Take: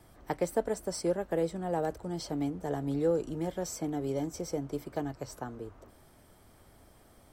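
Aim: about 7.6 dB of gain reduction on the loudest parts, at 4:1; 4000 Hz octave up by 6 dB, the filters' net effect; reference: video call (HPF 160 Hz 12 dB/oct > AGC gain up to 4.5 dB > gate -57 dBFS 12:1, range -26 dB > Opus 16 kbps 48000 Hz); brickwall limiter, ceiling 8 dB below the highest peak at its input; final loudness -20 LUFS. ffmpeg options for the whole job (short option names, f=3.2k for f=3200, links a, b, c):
-af "equalizer=f=4k:t=o:g=8,acompressor=threshold=-32dB:ratio=4,alimiter=level_in=4dB:limit=-24dB:level=0:latency=1,volume=-4dB,highpass=160,dynaudnorm=m=4.5dB,agate=range=-26dB:threshold=-57dB:ratio=12,volume=20.5dB" -ar 48000 -c:a libopus -b:a 16k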